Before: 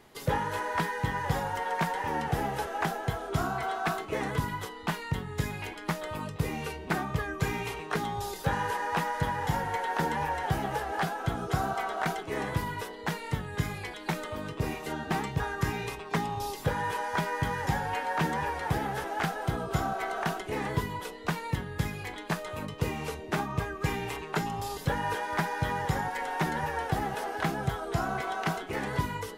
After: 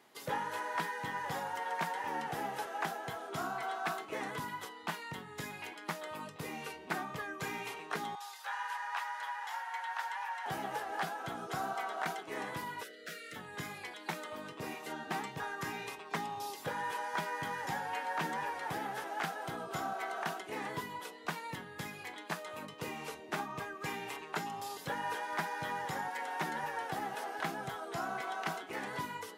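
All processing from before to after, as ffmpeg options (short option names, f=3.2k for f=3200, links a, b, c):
-filter_complex "[0:a]asettb=1/sr,asplit=3[a][b][c];[a]atrim=end=8.154[d];[b]atrim=start=8.15:end=10.46,asetpts=PTS-STARTPTS,afade=t=in:d=0.004:c=qsin,afade=t=out:st=2.306:d=0.004:c=qsin,highpass=f=870:w=0.5412,highpass=f=870:w=1.3066,highshelf=f=6.5k:g=-8[e];[c]atrim=start=10.456[f];[d][e]acrossfade=d=0.004:c1=hsin:c2=qsin[g];[g][f]acrossfade=d=0.004:c1=qsin:c2=hsin,asettb=1/sr,asplit=3[h][i][j];[h]atrim=end=12.834[k];[i]atrim=start=12.83:end=13.36,asetpts=PTS-STARTPTS,afade=t=in:d=0.004:c=qsin,afade=t=out:st=0.526:d=0.004:c=qsin,equalizer=f=120:t=o:w=2.2:g=-9,asoftclip=type=hard:threshold=-33dB,asuperstop=centerf=930:order=12:qfactor=1.7[l];[j]atrim=start=13.356[m];[k][l]acrossfade=d=0.004:c1=hsin:c2=qsin[n];[n][m]acrossfade=d=0.004:c1=qsin:c2=hsin,highpass=260,equalizer=f=440:t=o:w=0.78:g=-4,volume=-5dB"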